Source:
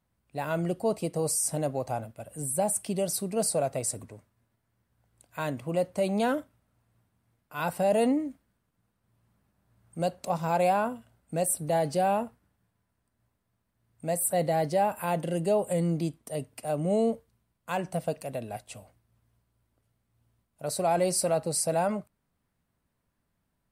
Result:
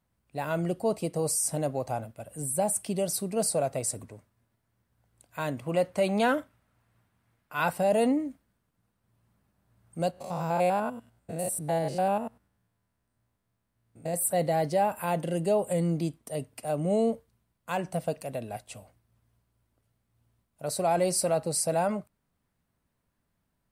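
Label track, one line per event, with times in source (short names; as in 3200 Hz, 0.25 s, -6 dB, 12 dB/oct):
5.660000	7.720000	bell 1800 Hz +6 dB 2.2 oct
10.110000	14.140000	stepped spectrum every 0.1 s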